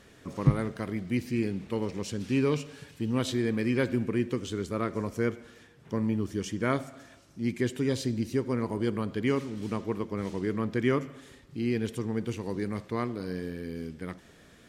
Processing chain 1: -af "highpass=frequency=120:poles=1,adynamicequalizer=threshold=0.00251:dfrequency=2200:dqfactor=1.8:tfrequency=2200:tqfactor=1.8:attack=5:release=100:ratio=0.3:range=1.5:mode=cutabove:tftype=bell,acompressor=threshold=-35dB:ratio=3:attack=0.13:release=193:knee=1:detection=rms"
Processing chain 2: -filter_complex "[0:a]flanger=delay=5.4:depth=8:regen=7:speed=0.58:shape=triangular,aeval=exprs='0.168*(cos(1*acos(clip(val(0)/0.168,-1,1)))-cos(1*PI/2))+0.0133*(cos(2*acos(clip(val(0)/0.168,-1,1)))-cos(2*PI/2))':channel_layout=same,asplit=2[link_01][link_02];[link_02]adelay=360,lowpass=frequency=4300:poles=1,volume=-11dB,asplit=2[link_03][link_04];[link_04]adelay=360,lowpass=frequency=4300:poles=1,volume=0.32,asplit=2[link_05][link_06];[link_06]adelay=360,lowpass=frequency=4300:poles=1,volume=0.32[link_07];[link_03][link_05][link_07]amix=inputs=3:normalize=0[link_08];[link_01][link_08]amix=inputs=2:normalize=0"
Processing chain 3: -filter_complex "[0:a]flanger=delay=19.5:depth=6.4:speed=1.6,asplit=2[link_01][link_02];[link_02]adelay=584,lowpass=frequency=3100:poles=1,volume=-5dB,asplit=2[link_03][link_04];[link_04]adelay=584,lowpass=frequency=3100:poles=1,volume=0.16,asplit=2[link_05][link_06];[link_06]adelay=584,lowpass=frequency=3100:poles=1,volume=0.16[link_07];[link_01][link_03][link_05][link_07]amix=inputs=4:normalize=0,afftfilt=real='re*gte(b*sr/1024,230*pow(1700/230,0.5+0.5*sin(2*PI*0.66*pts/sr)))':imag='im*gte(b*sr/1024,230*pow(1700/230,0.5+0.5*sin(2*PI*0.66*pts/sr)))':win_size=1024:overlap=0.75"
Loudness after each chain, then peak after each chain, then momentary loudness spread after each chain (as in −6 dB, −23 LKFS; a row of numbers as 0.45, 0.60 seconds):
−41.5, −34.0, −39.5 LKFS; −27.0, −16.0, −19.0 dBFS; 8, 11, 14 LU